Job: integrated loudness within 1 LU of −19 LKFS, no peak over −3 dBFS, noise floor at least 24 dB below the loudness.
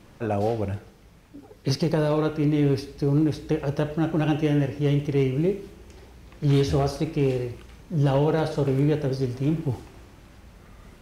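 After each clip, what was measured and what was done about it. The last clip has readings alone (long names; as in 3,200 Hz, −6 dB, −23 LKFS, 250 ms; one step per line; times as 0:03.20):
share of clipped samples 0.2%; peaks flattened at −13.5 dBFS; integrated loudness −24.5 LKFS; sample peak −13.5 dBFS; target loudness −19.0 LKFS
→ clipped peaks rebuilt −13.5 dBFS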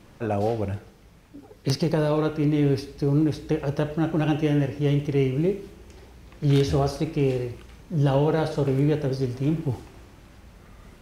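share of clipped samples 0.0%; integrated loudness −24.5 LKFS; sample peak −5.0 dBFS; target loudness −19.0 LKFS
→ level +5.5 dB
brickwall limiter −3 dBFS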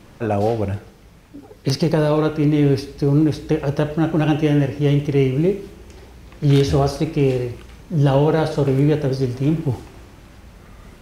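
integrated loudness −19.0 LKFS; sample peak −3.0 dBFS; background noise floor −46 dBFS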